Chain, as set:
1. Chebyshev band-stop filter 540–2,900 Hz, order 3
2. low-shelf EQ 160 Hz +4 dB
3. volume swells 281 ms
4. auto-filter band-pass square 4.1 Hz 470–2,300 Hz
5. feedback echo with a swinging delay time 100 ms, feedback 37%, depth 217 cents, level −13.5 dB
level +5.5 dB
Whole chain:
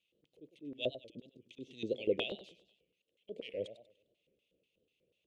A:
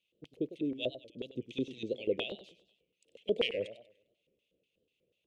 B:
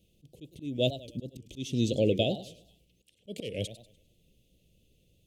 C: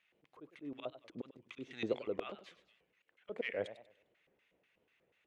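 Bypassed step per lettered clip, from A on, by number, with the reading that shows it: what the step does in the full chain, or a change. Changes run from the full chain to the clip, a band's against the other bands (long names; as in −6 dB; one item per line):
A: 3, change in crest factor −3.5 dB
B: 4, 125 Hz band +13.5 dB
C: 1, 4 kHz band −7.5 dB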